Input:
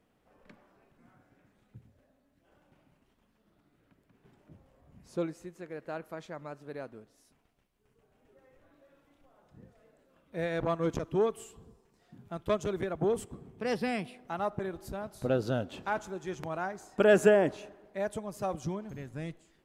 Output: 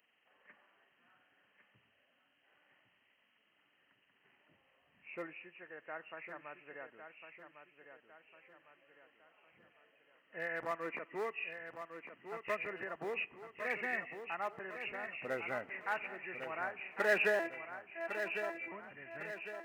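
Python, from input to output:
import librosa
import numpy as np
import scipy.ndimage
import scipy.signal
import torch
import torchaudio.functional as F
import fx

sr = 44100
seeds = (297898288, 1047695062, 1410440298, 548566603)

p1 = fx.freq_compress(x, sr, knee_hz=1700.0, ratio=4.0)
p2 = fx.highpass(p1, sr, hz=170.0, slope=24, at=(10.71, 11.31))
p3 = np.clip(p2, -10.0 ** (-24.5 / 20.0), 10.0 ** (-24.5 / 20.0))
p4 = p2 + (p3 * librosa.db_to_amplitude(-11.0))
p5 = fx.robotise(p4, sr, hz=333.0, at=(17.39, 18.72))
p6 = np.diff(p5, prepend=0.0)
p7 = p6 + fx.echo_feedback(p6, sr, ms=1104, feedback_pct=45, wet_db=-8.5, dry=0)
y = p7 * librosa.db_to_amplitude(10.0)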